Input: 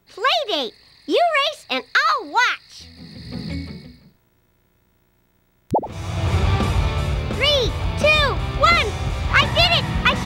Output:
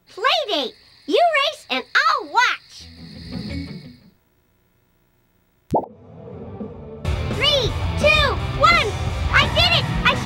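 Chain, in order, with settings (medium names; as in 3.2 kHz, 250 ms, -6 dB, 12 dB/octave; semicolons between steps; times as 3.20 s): flange 0.8 Hz, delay 5.8 ms, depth 8.4 ms, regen -30%; 5.84–7.05 s: two resonant band-passes 330 Hz, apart 0.93 oct; trim +4 dB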